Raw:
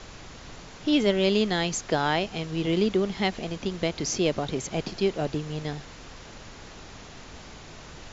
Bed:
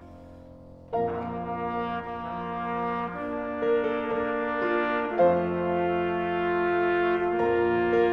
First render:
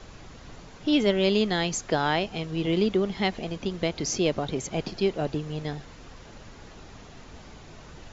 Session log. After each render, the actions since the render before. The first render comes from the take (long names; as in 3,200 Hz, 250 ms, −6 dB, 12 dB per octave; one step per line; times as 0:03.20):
broadband denoise 6 dB, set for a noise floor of −45 dBFS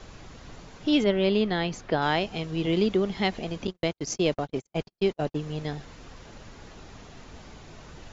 0:01.04–0:02.02: high-frequency loss of the air 180 metres
0:03.67–0:05.37: noise gate −30 dBFS, range −53 dB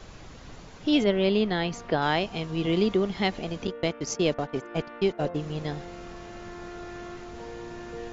mix in bed −16.5 dB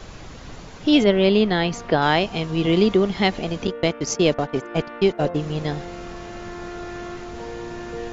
level +6.5 dB